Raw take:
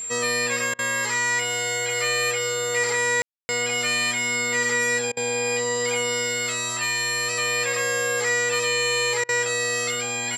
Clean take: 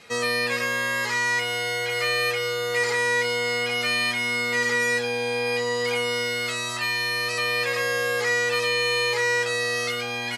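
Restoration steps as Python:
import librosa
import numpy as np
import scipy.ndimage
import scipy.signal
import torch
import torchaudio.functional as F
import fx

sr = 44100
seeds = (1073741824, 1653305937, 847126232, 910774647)

y = fx.notch(x, sr, hz=7400.0, q=30.0)
y = fx.fix_ambience(y, sr, seeds[0], print_start_s=4.98, print_end_s=5.48, start_s=3.22, end_s=3.49)
y = fx.fix_interpolate(y, sr, at_s=(0.74, 3.24, 5.12, 9.24), length_ms=47.0)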